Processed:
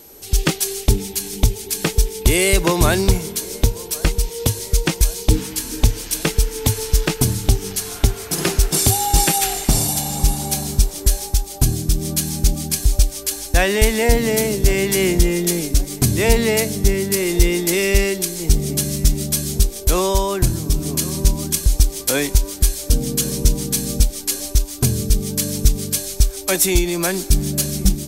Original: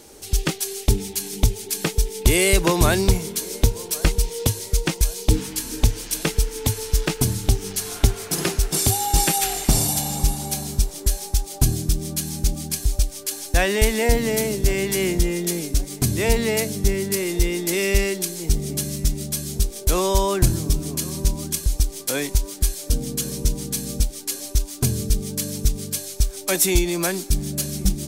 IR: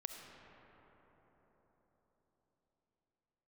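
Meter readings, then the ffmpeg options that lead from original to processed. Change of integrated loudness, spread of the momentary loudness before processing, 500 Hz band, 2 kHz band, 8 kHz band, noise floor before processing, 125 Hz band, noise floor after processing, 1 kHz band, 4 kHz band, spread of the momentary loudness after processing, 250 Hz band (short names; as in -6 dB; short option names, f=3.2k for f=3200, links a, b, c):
+3.5 dB, 7 LU, +3.5 dB, +3.5 dB, +3.5 dB, -37 dBFS, +3.5 dB, -34 dBFS, +3.0 dB, +3.5 dB, 6 LU, +3.5 dB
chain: -filter_complex "[0:a]dynaudnorm=f=220:g=3:m=11.5dB,aeval=exprs='val(0)+0.00708*sin(2*PI*12000*n/s)':c=same,asplit=2[a][b];[1:a]atrim=start_sample=2205,asetrate=79380,aresample=44100[c];[b][c]afir=irnorm=-1:irlink=0,volume=-14.5dB[d];[a][d]amix=inputs=2:normalize=0,volume=-1dB"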